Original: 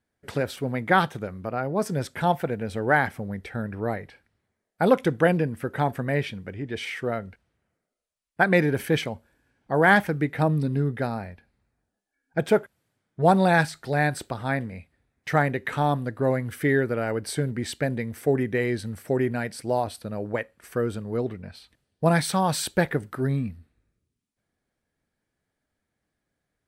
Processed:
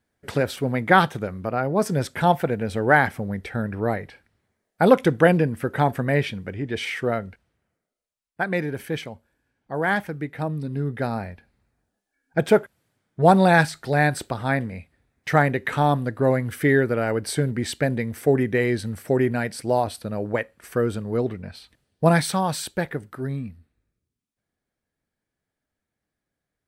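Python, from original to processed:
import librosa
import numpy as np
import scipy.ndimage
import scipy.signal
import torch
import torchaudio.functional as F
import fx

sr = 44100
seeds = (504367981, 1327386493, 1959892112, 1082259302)

y = fx.gain(x, sr, db=fx.line((7.13, 4.0), (8.42, -5.0), (10.61, -5.0), (11.17, 3.5), (22.08, 3.5), (22.73, -3.5)))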